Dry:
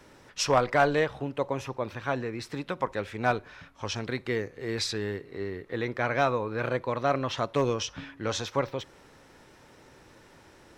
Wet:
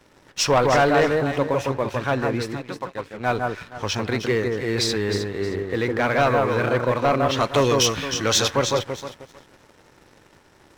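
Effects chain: 2.4–3.4 dip -9.5 dB, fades 0.21 s; 7.4–8.48 high shelf 2200 Hz +11 dB; echo with dull and thin repeats by turns 0.156 s, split 1700 Hz, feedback 51%, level -3.5 dB; sample leveller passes 2

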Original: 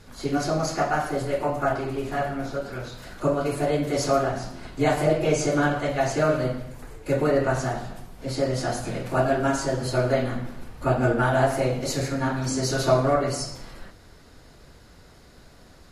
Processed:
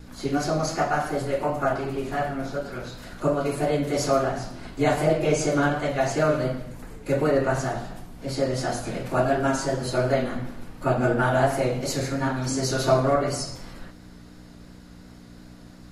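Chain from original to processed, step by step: hum 60 Hz, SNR 15 dB; vibrato 2.8 Hz 34 cents; notches 60/120 Hz

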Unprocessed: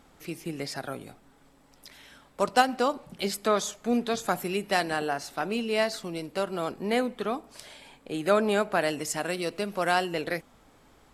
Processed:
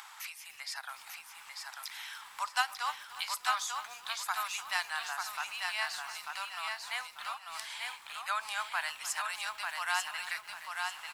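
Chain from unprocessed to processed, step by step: upward compressor, threshold -27 dBFS; elliptic high-pass 910 Hz, stop band 60 dB; on a send: feedback echo 0.893 s, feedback 31%, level -4 dB; on the sum: lo-fi delay 0.294 s, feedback 55%, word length 7-bit, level -14.5 dB; gain -3.5 dB

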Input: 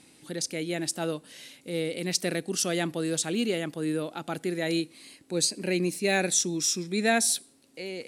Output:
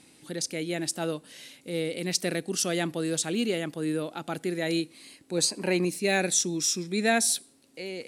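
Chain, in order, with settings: 5.38–5.85 bell 960 Hz +13.5 dB 0.91 oct

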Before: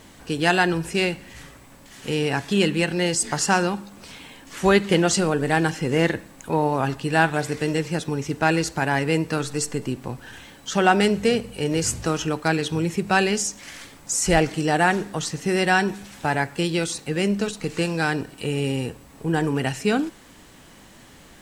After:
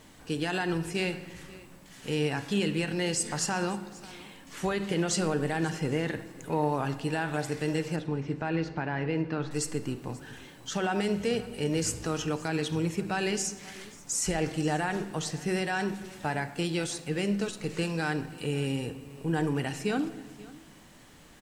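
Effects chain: limiter -12 dBFS, peak gain reduction 9.5 dB; 7.96–9.51 air absorption 270 m; on a send: echo 0.535 s -21 dB; on the sum: shoebox room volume 1200 m³, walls mixed, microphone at 0.45 m; gain -6.5 dB

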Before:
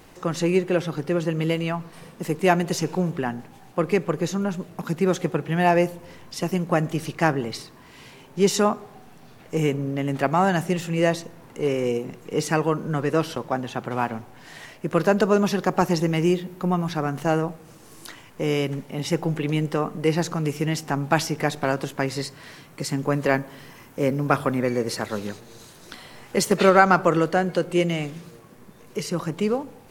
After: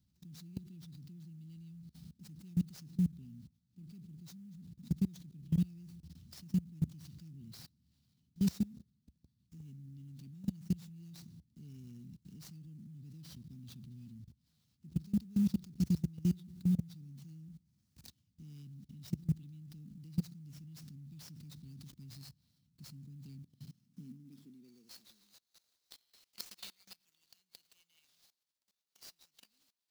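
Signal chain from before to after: elliptic band-stop 210–4200 Hz, stop band 50 dB; high shelf 8300 Hz -12 dB; level quantiser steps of 24 dB; high-pass sweep 67 Hz -> 1800 Hz, 23.17–25.87; clock jitter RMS 0.024 ms; gain -4 dB

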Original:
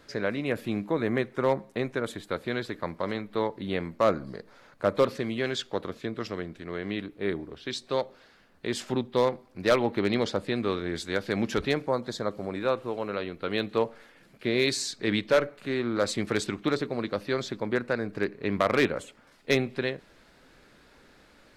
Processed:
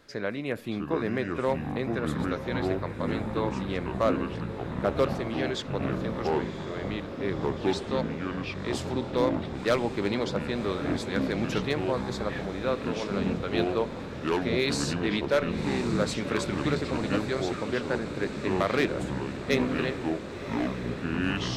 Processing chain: diffused feedback echo 1.068 s, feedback 72%, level -11 dB; echoes that change speed 0.59 s, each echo -6 st, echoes 3; gain -2.5 dB

